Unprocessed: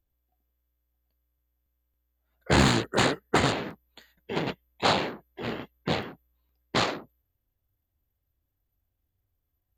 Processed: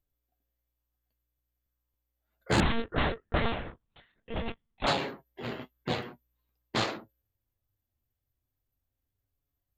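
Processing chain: flange 0.21 Hz, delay 7 ms, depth 2.3 ms, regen +50%; 2.60–4.87 s: monotone LPC vocoder at 8 kHz 230 Hz

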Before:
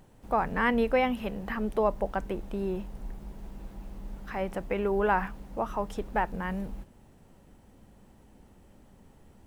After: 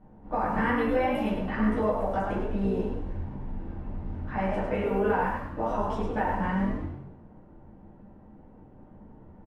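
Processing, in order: level-controlled noise filter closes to 1.1 kHz, open at -24.5 dBFS; compression, threshold -28 dBFS, peak gain reduction 8 dB; frequency-shifting echo 103 ms, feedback 39%, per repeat +51 Hz, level -5 dB; plate-style reverb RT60 0.51 s, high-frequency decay 0.5×, DRR -8.5 dB; trim -5.5 dB

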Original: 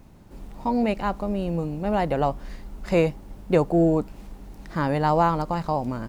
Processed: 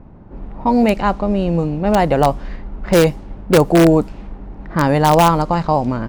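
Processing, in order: level-controlled noise filter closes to 1.2 kHz, open at -18 dBFS; in parallel at -5.5 dB: integer overflow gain 12 dB; on the sum: trim +5.5 dB

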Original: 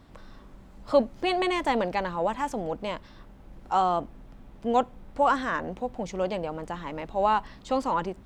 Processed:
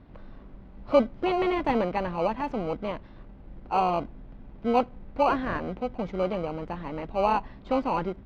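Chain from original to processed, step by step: in parallel at -3.5 dB: sample-and-hold 25×; on the sum: distance through air 320 m; trim -1.5 dB

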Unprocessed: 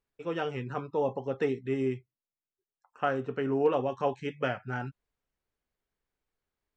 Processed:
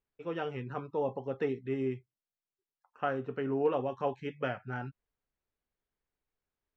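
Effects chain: distance through air 120 m; trim -3 dB

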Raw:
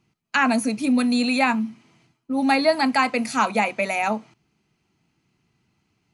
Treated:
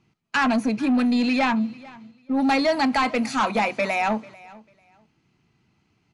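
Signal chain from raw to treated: 0.51–2.40 s: treble shelf 7.1 kHz -11 dB; saturation -18.5 dBFS, distortion -12 dB; distance through air 60 m; feedback delay 443 ms, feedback 21%, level -22 dB; trim +3 dB

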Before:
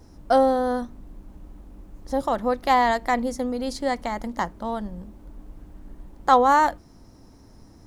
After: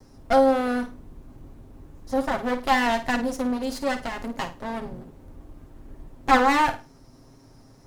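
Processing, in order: comb filter that takes the minimum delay 7.5 ms; wow and flutter 20 cents; flutter echo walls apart 9 m, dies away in 0.29 s

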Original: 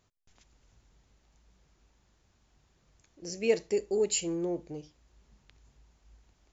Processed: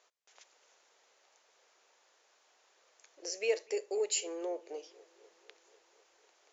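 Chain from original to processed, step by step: elliptic band-pass 480–6900 Hz, stop band 50 dB; compression 1.5:1, threshold -48 dBFS, peak gain reduction 9.5 dB; on a send: bucket-brigade echo 248 ms, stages 4096, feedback 70%, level -24 dB; on the sum: trim +6 dB

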